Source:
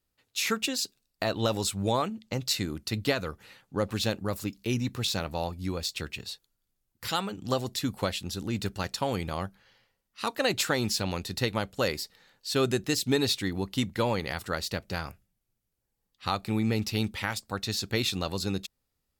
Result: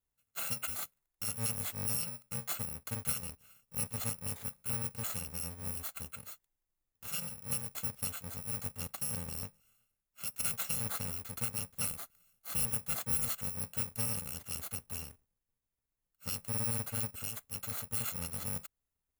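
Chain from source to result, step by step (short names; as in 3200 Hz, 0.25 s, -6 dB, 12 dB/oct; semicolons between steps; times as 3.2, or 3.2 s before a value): FFT order left unsorted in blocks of 128 samples; bell 4700 Hz -7 dB 1.2 oct; gain -7 dB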